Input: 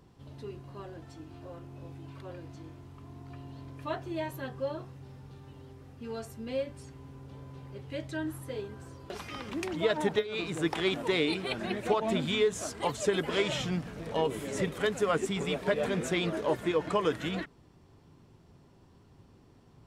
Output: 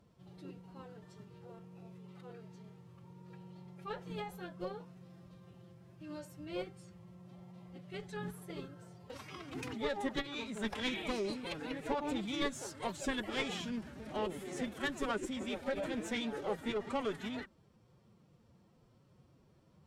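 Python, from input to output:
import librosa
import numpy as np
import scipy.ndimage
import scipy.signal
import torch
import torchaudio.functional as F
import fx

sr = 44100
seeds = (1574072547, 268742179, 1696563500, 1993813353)

y = fx.tube_stage(x, sr, drive_db=22.0, bias=0.55)
y = fx.spec_repair(y, sr, seeds[0], start_s=10.92, length_s=0.43, low_hz=1600.0, high_hz=4000.0, source='both')
y = fx.pitch_keep_formants(y, sr, semitones=5.0)
y = F.gain(torch.from_numpy(y), -4.5).numpy()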